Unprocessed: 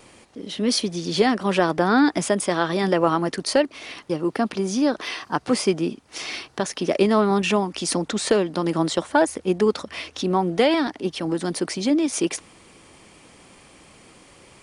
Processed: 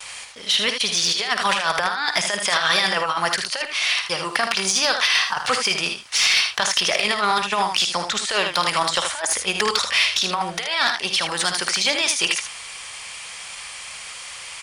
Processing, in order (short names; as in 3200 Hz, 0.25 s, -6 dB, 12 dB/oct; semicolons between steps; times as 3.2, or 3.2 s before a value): gate with hold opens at -41 dBFS; passive tone stack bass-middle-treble 10-0-10; negative-ratio compressor -35 dBFS, ratio -0.5; early reflections 52 ms -12 dB, 78 ms -7.5 dB; overdrive pedal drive 14 dB, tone 6800 Hz, clips at -12 dBFS; ending taper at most 270 dB/s; gain +8 dB